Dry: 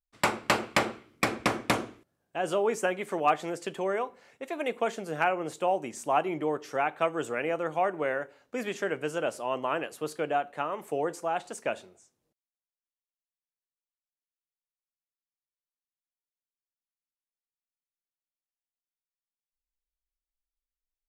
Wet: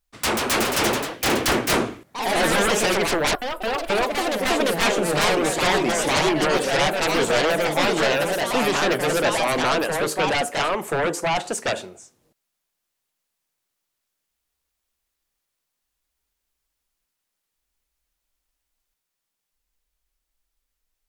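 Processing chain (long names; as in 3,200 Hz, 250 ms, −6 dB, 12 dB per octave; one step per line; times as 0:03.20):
sine wavefolder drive 17 dB, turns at −11.5 dBFS
0:03.35–0:03.90: inverse Chebyshev band-stop filter 140–5,200 Hz, stop band 60 dB
delay with pitch and tempo change per echo 162 ms, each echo +2 semitones, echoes 3
level −6.5 dB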